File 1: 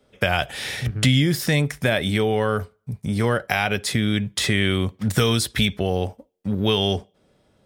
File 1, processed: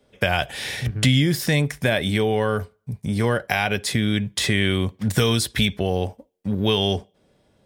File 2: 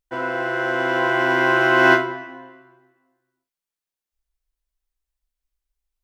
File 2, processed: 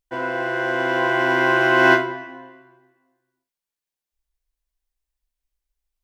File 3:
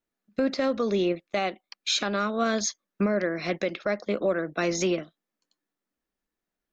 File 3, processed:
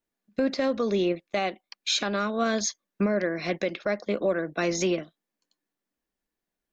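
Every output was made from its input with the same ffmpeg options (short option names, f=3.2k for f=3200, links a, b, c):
-af "bandreject=f=1.3k:w=12"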